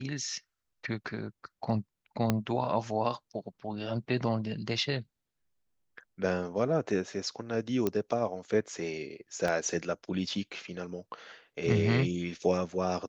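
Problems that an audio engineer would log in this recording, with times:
0:02.30: click −12 dBFS
0:07.87: click −15 dBFS
0:09.48: drop-out 2.8 ms

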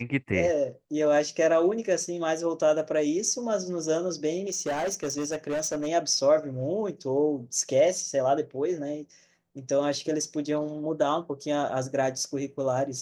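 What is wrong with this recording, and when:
0:04.48–0:05.88: clipping −25 dBFS

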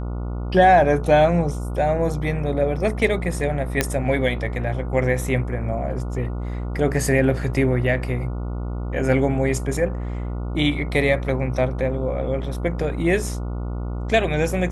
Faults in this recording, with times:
mains buzz 60 Hz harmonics 24 −27 dBFS
0:03.81: click −3 dBFS

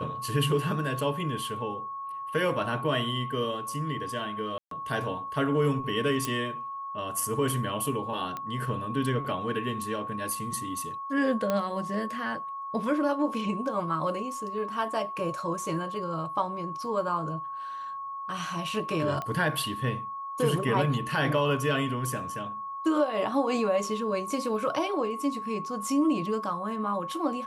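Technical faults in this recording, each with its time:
whistle 1,100 Hz −34 dBFS
0:04.58–0:04.71: drop-out 133 ms
0:06.25: click −13 dBFS
0:08.37: click −21 dBFS
0:11.50: click −14 dBFS
0:19.22: click −20 dBFS

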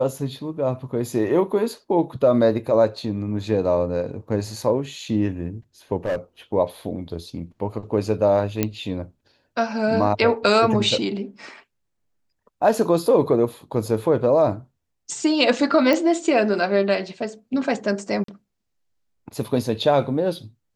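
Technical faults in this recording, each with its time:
0:06.05–0:06.17: clipping −20 dBFS
0:08.63: click −6 dBFS
0:15.93: click −8 dBFS
0:18.24–0:18.28: drop-out 43 ms

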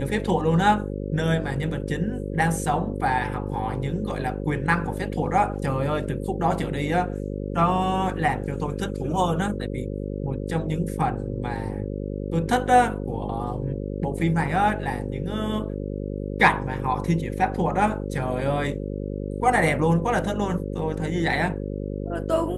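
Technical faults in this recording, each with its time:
mains buzz 50 Hz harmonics 11 −30 dBFS

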